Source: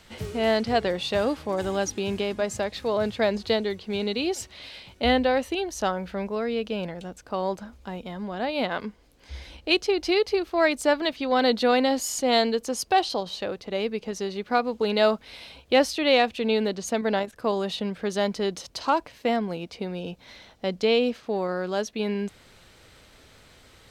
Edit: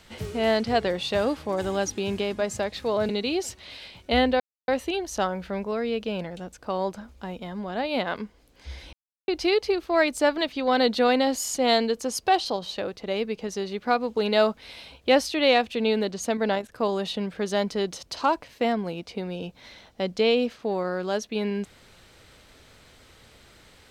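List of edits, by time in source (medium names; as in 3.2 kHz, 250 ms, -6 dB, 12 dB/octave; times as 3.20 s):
3.09–4.01 s: delete
5.32 s: insert silence 0.28 s
9.57–9.92 s: mute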